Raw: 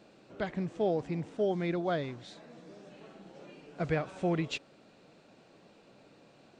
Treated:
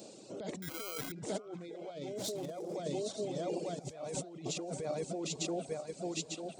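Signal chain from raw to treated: regenerating reverse delay 0.447 s, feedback 73%, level -7 dB; downsampling 22050 Hz; in parallel at +2.5 dB: limiter -25.5 dBFS, peak gain reduction 8 dB; on the sum: negative-ratio compressor -33 dBFS, ratio -1; reverb removal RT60 1.6 s; 2.12–2.76 hard clip -31.5 dBFS, distortion -22 dB; EQ curve 560 Hz 0 dB, 1700 Hz -20 dB, 7000 Hz +3 dB; 0.62–1.12 sample-rate reducer 1800 Hz, jitter 0%; HPF 110 Hz; tilt +2.5 dB/oct; delay with a stepping band-pass 0.538 s, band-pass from 970 Hz, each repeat 1.4 oct, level -11 dB

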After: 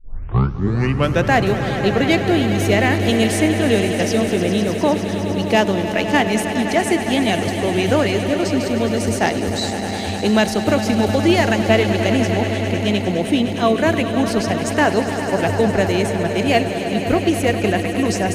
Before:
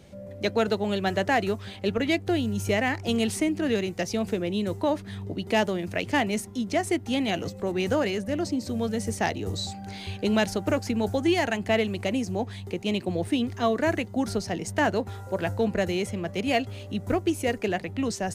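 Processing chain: tape start at the beginning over 1.34 s; swelling echo 0.102 s, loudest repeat 5, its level -12.5 dB; gain +7.5 dB

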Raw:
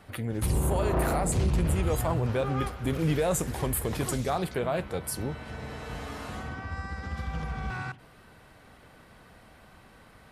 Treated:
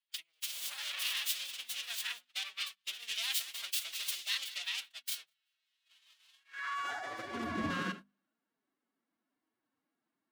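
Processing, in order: self-modulated delay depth 0.45 ms; high-pass sweep 3200 Hz -> 180 Hz, 6.36–7.56; dynamic EQ 600 Hz, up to -5 dB, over -60 dBFS, Q 2.5; on a send: split-band echo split 570 Hz, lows 0.112 s, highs 0.193 s, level -15 dB; on the sum: gate -41 dBFS, range -35 dB; formant-preserving pitch shift +6.5 st; notches 50/100/150/200/250 Hz

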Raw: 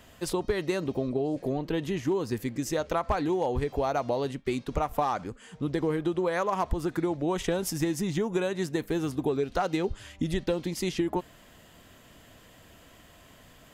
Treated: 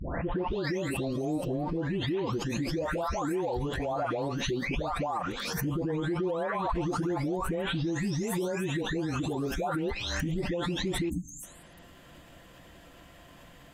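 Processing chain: spectral delay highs late, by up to 0.647 s; high shelf 5100 Hz -8.5 dB; spectral delete 11.09–11.43, 320–6200 Hz; limiter -27.5 dBFS, peak gain reduction 10.5 dB; backwards sustainer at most 27 dB/s; gain +3.5 dB

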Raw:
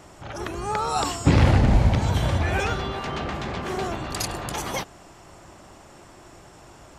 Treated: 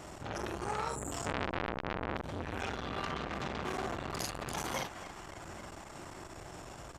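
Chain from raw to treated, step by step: 0.91–1.12 spectral gain 590–6800 Hz -30 dB; 1.29–2.17 tilt -4 dB/oct; compressor 2.5:1, threshold -34 dBFS, peak gain reduction 24.5 dB; doubler 45 ms -3.5 dB; narrowing echo 0.274 s, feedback 76%, band-pass 1600 Hz, level -11.5 dB; core saturation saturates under 2000 Hz

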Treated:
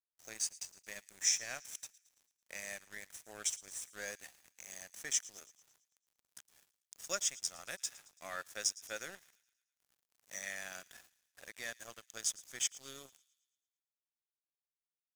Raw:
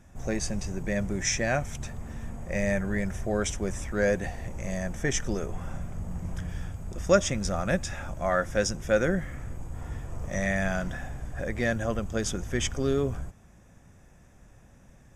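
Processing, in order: differentiator; in parallel at -1.5 dB: compressor, threshold -48 dBFS, peak gain reduction 20 dB; on the sum: crossover distortion -46.5 dBFS; thin delay 0.111 s, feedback 53%, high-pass 2700 Hz, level -19 dB

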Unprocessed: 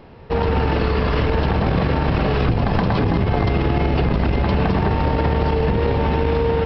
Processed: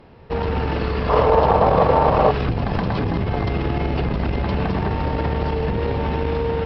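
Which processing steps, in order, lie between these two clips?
1.09–2.31 band shelf 730 Hz +13 dB; added harmonics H 6 -34 dB, 7 -40 dB, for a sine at 2 dBFS; gain -3 dB

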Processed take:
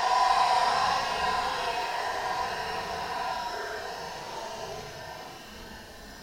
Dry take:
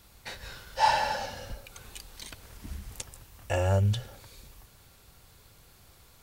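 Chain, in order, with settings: ring modulator 120 Hz; Paulstretch 11×, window 0.05 s, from 0.82

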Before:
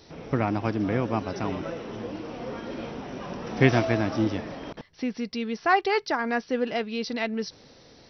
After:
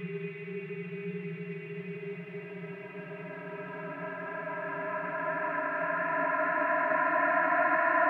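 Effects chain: tilt +2.5 dB/oct; mistuned SSB -57 Hz 160–2500 Hz; crackle 120/s -54 dBFS; flutter echo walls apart 11.5 m, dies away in 0.55 s; Paulstretch 48×, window 0.25 s, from 5.52; gain -5 dB

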